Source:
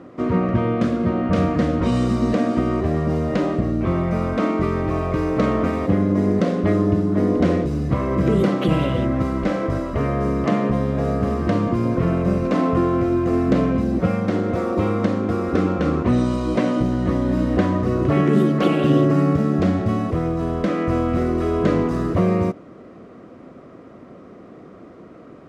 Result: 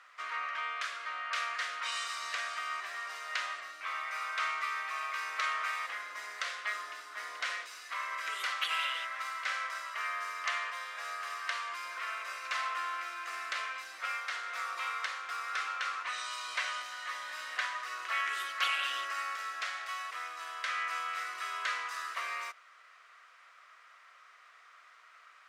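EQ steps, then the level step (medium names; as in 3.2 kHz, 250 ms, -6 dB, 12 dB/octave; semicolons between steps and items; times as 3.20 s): high-pass 1.4 kHz 24 dB/octave; +1.0 dB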